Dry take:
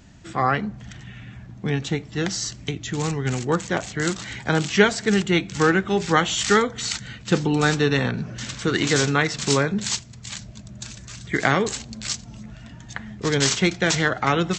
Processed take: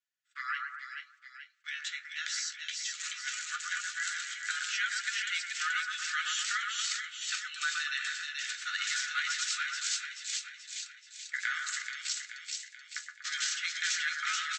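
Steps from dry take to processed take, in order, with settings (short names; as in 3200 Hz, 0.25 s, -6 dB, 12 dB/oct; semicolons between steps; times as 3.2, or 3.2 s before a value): gate -33 dBFS, range -31 dB; steep high-pass 1300 Hz 96 dB/oct; comb 4.1 ms, depth 36%; compressor 2.5:1, threshold -28 dBFS, peak gain reduction 9 dB; flange 0.19 Hz, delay 6.9 ms, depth 7 ms, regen +45%; on a send: split-band echo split 1800 Hz, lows 0.12 s, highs 0.431 s, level -3 dB; on the sum: gain -1 dB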